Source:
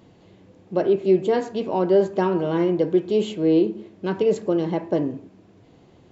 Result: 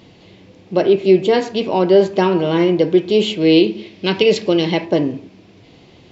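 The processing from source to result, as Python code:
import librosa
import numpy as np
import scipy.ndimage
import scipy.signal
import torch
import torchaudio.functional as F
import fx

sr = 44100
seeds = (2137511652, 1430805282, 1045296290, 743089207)

y = fx.band_shelf(x, sr, hz=3400.0, db=fx.steps((0.0, 8.0), (3.4, 15.5), (4.84, 9.0)), octaves=1.7)
y = y * 10.0 ** (6.0 / 20.0)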